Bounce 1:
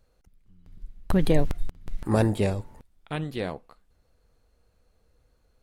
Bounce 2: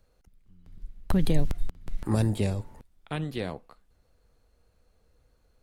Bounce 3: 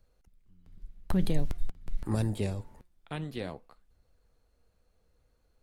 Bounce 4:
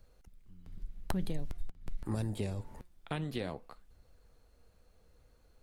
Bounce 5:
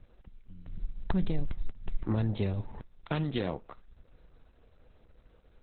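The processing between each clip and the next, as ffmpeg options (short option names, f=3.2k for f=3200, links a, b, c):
-filter_complex "[0:a]acrossover=split=230|3000[a][b][c];[b]acompressor=threshold=-30dB:ratio=6[d];[a][d][c]amix=inputs=3:normalize=0"
-af "flanger=delay=0.2:depth=5.7:regen=88:speed=0.5:shape=sinusoidal"
-af "acompressor=threshold=-40dB:ratio=3,volume=5.5dB"
-af "aeval=exprs='0.126*sin(PI/2*1.41*val(0)/0.126)':c=same" -ar 48000 -c:a libopus -b:a 8k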